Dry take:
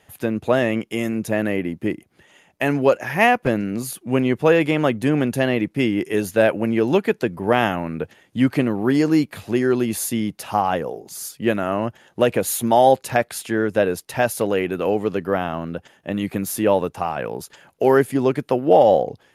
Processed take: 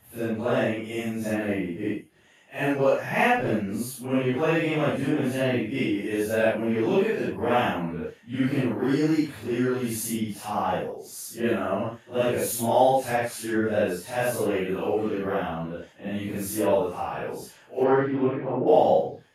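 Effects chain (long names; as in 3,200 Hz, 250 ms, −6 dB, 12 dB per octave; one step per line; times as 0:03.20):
random phases in long frames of 200 ms
0:17.83–0:18.66: low-pass filter 4,400 Hz → 1,900 Hz 24 dB per octave
level −5 dB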